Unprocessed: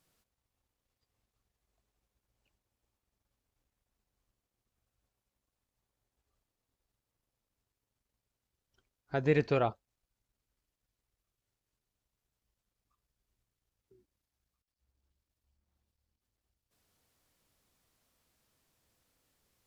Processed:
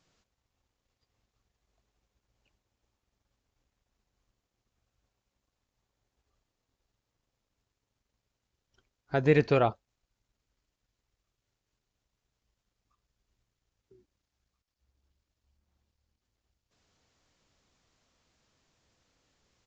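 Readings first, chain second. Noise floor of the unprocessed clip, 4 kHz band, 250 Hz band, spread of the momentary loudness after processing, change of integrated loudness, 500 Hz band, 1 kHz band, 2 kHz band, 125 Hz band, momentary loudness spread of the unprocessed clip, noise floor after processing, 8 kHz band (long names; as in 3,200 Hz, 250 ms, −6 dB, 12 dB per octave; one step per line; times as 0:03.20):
below −85 dBFS, +4.5 dB, +4.5 dB, 7 LU, +4.5 dB, +4.5 dB, +4.5 dB, +4.5 dB, +4.5 dB, 7 LU, below −85 dBFS, can't be measured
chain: downsampling to 16,000 Hz
level +4.5 dB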